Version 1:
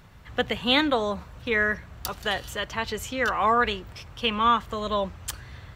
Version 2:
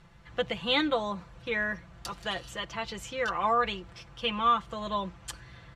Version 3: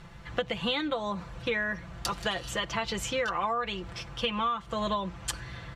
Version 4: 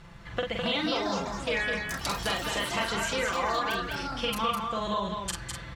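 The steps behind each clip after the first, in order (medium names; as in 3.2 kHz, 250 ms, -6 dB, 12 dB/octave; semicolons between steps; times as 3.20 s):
Bessel low-pass 8.5 kHz, order 8; dynamic bell 1.7 kHz, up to -5 dB, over -42 dBFS, Q 4.9; comb 5.9 ms, depth 66%; trim -6 dB
compression 16:1, threshold -34 dBFS, peak gain reduction 15 dB; trim +8 dB
doubling 45 ms -4 dB; ever faster or slower copies 371 ms, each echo +5 st, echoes 3, each echo -6 dB; delay 206 ms -5 dB; trim -1.5 dB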